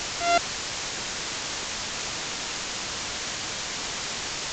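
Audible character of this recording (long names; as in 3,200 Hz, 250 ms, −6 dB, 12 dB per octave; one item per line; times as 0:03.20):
a buzz of ramps at a fixed pitch in blocks of 64 samples
tremolo saw up 5.1 Hz, depth 90%
a quantiser's noise floor 6 bits, dither triangular
A-law companding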